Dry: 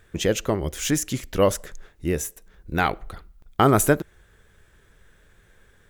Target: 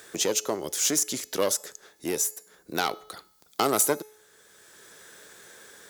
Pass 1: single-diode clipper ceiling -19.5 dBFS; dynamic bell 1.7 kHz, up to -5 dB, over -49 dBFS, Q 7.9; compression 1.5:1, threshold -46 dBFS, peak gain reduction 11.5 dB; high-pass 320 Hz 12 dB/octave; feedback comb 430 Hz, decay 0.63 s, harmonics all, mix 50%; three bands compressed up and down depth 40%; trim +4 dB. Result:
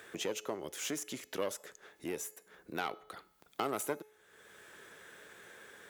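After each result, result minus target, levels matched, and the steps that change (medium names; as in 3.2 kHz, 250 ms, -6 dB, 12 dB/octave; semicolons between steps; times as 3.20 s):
compression: peak gain reduction +11.5 dB; 8 kHz band -4.5 dB
remove: compression 1.5:1, threshold -46 dBFS, peak gain reduction 11.5 dB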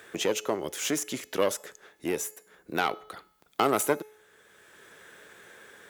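8 kHz band -5.5 dB
add after high-pass: resonant high shelf 3.6 kHz +7.5 dB, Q 1.5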